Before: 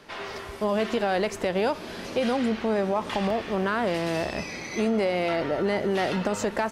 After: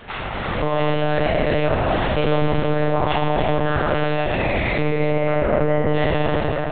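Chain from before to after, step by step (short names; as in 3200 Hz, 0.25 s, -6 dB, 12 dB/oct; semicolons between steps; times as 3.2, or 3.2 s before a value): spectral trails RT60 1.25 s; 4.82–5.88 LPF 1800 Hz 12 dB/oct; limiter -28.5 dBFS, peak gain reduction 17 dB; AGC gain up to 7 dB; echo with dull and thin repeats by turns 0.147 s, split 1400 Hz, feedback 65%, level -3 dB; monotone LPC vocoder at 8 kHz 150 Hz; gain +8.5 dB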